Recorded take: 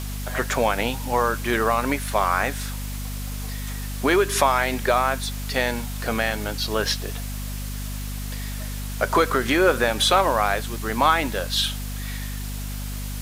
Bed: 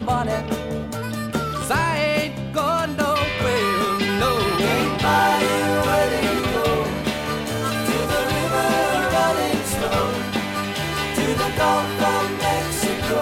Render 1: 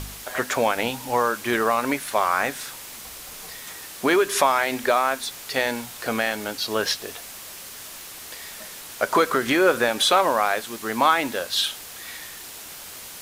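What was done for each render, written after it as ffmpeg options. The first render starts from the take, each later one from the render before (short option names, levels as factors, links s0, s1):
-af "bandreject=f=50:t=h:w=4,bandreject=f=100:t=h:w=4,bandreject=f=150:t=h:w=4,bandreject=f=200:t=h:w=4,bandreject=f=250:t=h:w=4"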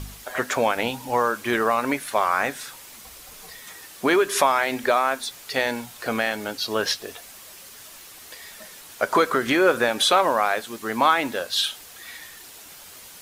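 -af "afftdn=nr=6:nf=-40"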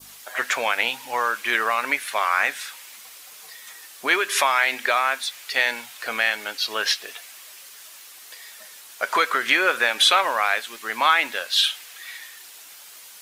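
-af "highpass=f=1100:p=1,adynamicequalizer=threshold=0.0112:dfrequency=2300:dqfactor=0.88:tfrequency=2300:tqfactor=0.88:attack=5:release=100:ratio=0.375:range=4:mode=boostabove:tftype=bell"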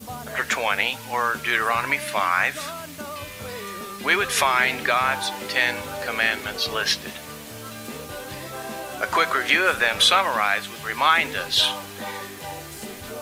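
-filter_complex "[1:a]volume=0.188[s0];[0:a][s0]amix=inputs=2:normalize=0"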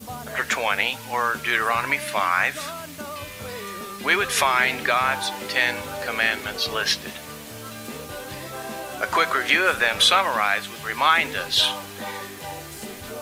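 -af anull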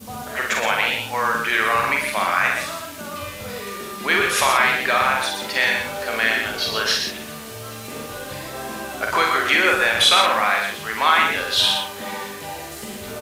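-filter_complex "[0:a]asplit=2[s0][s1];[s1]adelay=45,volume=0.631[s2];[s0][s2]amix=inputs=2:normalize=0,asplit=2[s3][s4];[s4]aecho=0:1:64.14|122.4:0.355|0.501[s5];[s3][s5]amix=inputs=2:normalize=0"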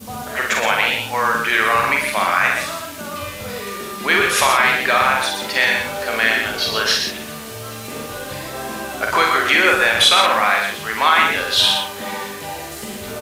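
-af "volume=1.41,alimiter=limit=0.794:level=0:latency=1"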